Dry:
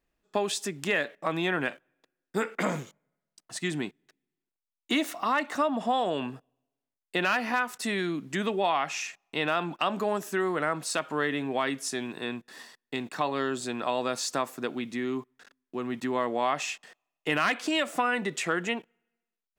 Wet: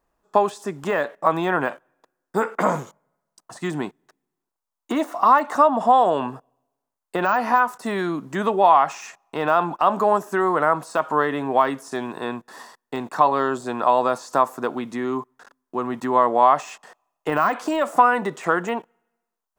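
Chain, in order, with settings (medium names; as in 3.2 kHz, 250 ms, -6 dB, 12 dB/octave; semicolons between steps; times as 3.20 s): de-esser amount 100%; FFT filter 300 Hz 0 dB, 730 Hz +7 dB, 1 kHz +11 dB, 2.3 kHz -6 dB, 3.7 kHz -5 dB, 6.5 kHz 0 dB; trim +4.5 dB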